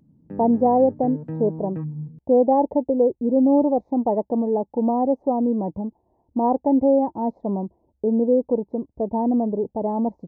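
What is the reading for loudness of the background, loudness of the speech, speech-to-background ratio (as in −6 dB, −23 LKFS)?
−34.0 LKFS, −21.5 LKFS, 12.5 dB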